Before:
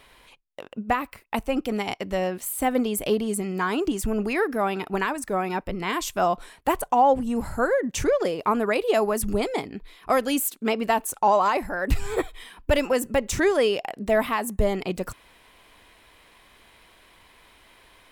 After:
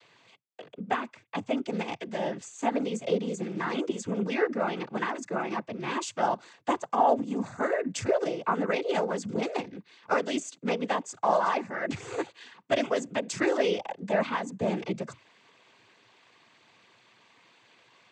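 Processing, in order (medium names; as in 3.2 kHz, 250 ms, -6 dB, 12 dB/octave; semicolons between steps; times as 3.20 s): noise-vocoded speech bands 16; Chebyshev shaper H 2 -36 dB, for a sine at -6 dBFS; trim -4.5 dB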